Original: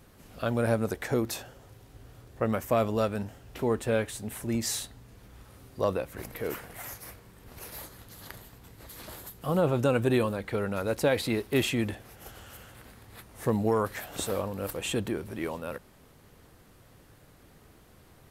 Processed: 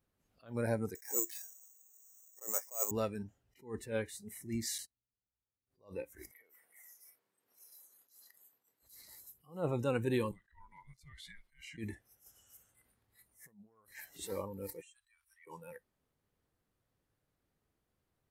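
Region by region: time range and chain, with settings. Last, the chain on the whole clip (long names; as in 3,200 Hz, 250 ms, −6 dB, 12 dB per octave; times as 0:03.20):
0:00.95–0:02.91: band-pass filter 430–2,200 Hz + bad sample-rate conversion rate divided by 6×, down none, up zero stuff
0:04.78–0:05.67: noise gate −41 dBFS, range −22 dB + Butterworth band-reject 3,600 Hz, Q 4.3
0:06.31–0:08.82: high-pass filter 340 Hz + downward compressor 4 to 1, threshold −46 dBFS
0:10.31–0:11.78: meter weighting curve A + downward compressor 4 to 1, threshold −40 dBFS + frequency shifter −420 Hz
0:13.26–0:13.88: high-shelf EQ 11,000 Hz +6.5 dB + downward compressor 16 to 1, threshold −39 dBFS
0:14.81–0:15.47: inverse Chebyshev band-stop filter 130–450 Hz, stop band 60 dB + downward compressor 12 to 1, threshold −47 dBFS
whole clip: noise reduction from a noise print of the clip's start 19 dB; level that may rise only so fast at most 180 dB per second; level −7.5 dB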